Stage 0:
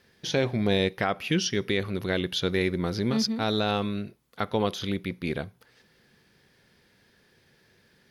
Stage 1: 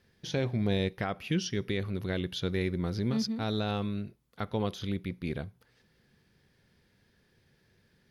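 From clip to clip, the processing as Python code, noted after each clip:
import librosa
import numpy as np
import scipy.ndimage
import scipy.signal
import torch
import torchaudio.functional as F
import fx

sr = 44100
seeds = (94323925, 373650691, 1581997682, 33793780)

y = fx.low_shelf(x, sr, hz=180.0, db=10.5)
y = F.gain(torch.from_numpy(y), -8.0).numpy()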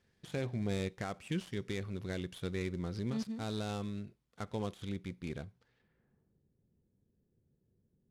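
y = fx.dead_time(x, sr, dead_ms=0.092)
y = fx.filter_sweep_lowpass(y, sr, from_hz=8800.0, to_hz=370.0, start_s=5.5, end_s=6.42, q=0.83)
y = F.gain(torch.from_numpy(y), -6.5).numpy()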